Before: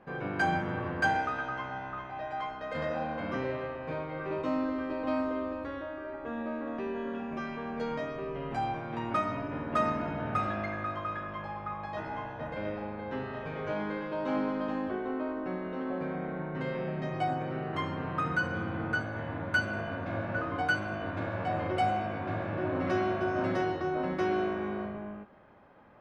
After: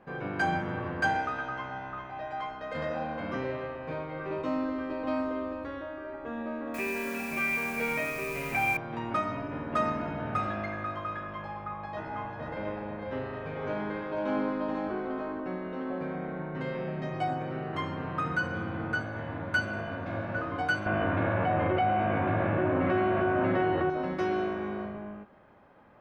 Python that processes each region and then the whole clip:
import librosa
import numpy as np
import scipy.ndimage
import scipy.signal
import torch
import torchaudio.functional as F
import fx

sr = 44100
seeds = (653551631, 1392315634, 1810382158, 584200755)

y = fx.chain(x, sr, fx.lowpass_res(hz=2400.0, q=15.0),
    fx.quant_dither(seeds[0], bits=8, dither='triangular'), at=(6.74, 8.77))
y = fx.chain(y, sr, fx.high_shelf(hz=4000.0, db=-5.0),
    fx.echo_single(ms=493, db=-6.0), at=(11.64, 15.4))
y = fx.chain(y, sr, fx.lowpass(hz=3000.0, slope=24),
    fx.env_flatten(amount_pct=70), at=(20.86, 23.9))